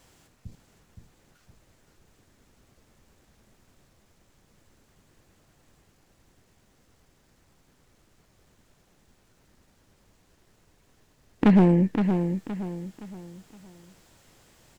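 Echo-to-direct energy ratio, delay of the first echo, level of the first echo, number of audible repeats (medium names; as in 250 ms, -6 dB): -6.5 dB, 518 ms, -7.0 dB, 4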